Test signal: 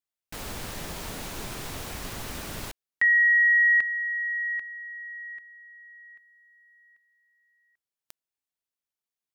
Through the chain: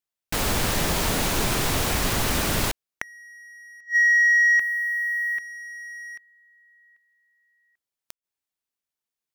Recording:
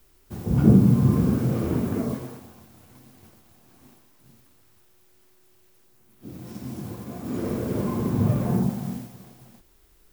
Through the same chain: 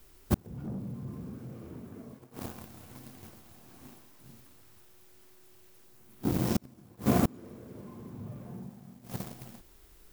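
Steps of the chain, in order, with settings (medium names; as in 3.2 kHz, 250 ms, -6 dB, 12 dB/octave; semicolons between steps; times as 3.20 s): waveshaping leveller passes 2; inverted gate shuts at -18 dBFS, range -33 dB; trim +5.5 dB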